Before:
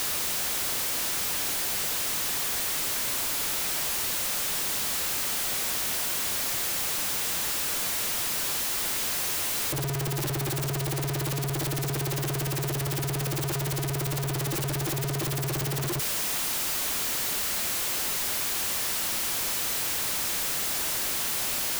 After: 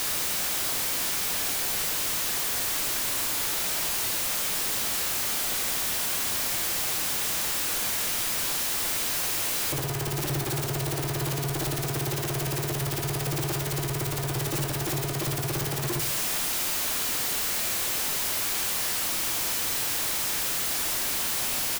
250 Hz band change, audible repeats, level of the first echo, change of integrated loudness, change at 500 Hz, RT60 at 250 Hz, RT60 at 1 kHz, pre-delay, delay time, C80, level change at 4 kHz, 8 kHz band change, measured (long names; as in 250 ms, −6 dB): +0.5 dB, 1, −13.5 dB, +0.5 dB, +1.0 dB, 0.70 s, 0.60 s, 14 ms, 75 ms, 13.5 dB, +1.0 dB, +1.0 dB